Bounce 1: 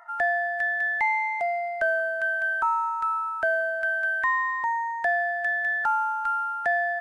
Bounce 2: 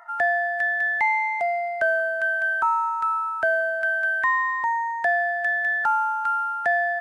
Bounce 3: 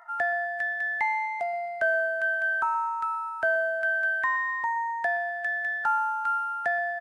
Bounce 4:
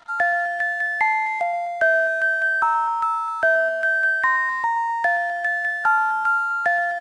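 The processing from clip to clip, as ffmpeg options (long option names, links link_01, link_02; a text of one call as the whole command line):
ffmpeg -i in.wav -af "highpass=49,volume=2.5dB" out.wav
ffmpeg -i in.wav -filter_complex "[0:a]asplit=2[link_01][link_02];[link_02]adelay=18,volume=-13dB[link_03];[link_01][link_03]amix=inputs=2:normalize=0,asplit=2[link_04][link_05];[link_05]adelay=124,lowpass=frequency=2000:poles=1,volume=-14dB,asplit=2[link_06][link_07];[link_07]adelay=124,lowpass=frequency=2000:poles=1,volume=0.38,asplit=2[link_08][link_09];[link_09]adelay=124,lowpass=frequency=2000:poles=1,volume=0.38,asplit=2[link_10][link_11];[link_11]adelay=124,lowpass=frequency=2000:poles=1,volume=0.38[link_12];[link_04][link_06][link_08][link_10][link_12]amix=inputs=5:normalize=0,volume=-4dB" out.wav
ffmpeg -i in.wav -af "aecho=1:1:256:0.15,aeval=exprs='sgn(val(0))*max(abs(val(0))-0.00188,0)':channel_layout=same,aresample=22050,aresample=44100,volume=7dB" out.wav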